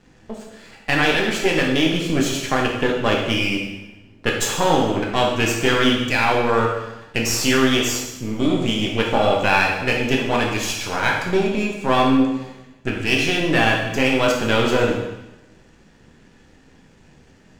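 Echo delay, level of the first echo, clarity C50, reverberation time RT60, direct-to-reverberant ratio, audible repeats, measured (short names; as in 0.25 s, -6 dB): none, none, 3.0 dB, 1.0 s, -1.5 dB, none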